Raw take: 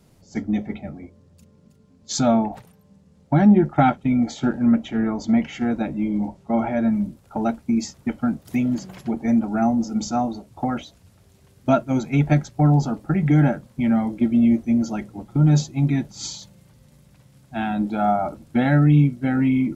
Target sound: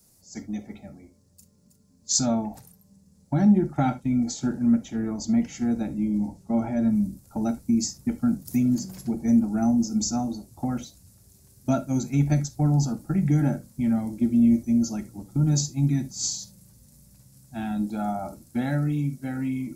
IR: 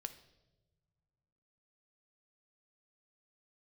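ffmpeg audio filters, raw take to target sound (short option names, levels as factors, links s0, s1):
-filter_complex "[0:a]acrossover=split=330|2200[s0][s1][s2];[s0]dynaudnorm=f=320:g=11:m=3.76[s3];[s2]aexciter=amount=8.3:drive=2.8:freq=4500[s4];[s3][s1][s4]amix=inputs=3:normalize=0[s5];[1:a]atrim=start_sample=2205,afade=t=out:st=0.13:d=0.01,atrim=end_sample=6174[s6];[s5][s6]afir=irnorm=-1:irlink=0,volume=0.473"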